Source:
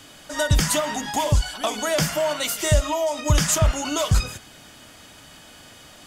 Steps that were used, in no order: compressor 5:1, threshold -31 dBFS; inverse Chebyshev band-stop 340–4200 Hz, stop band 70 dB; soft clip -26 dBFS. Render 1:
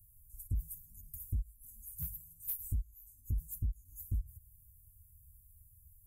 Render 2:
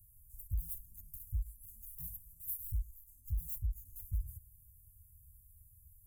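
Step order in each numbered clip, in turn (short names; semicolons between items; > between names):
inverse Chebyshev band-stop > compressor > soft clip; soft clip > inverse Chebyshev band-stop > compressor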